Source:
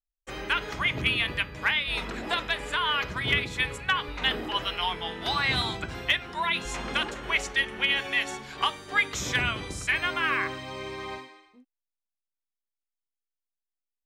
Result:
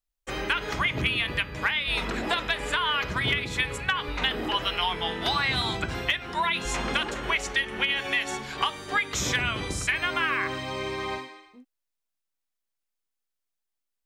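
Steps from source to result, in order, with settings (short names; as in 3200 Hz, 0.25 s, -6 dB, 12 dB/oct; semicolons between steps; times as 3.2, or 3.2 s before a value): compressor, threshold -27 dBFS, peak gain reduction 9 dB; gain +5 dB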